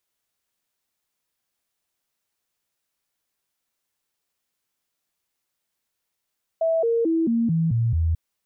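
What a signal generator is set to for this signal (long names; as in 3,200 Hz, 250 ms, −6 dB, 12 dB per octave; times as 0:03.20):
stepped sweep 654 Hz down, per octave 2, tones 7, 0.22 s, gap 0.00 s −18 dBFS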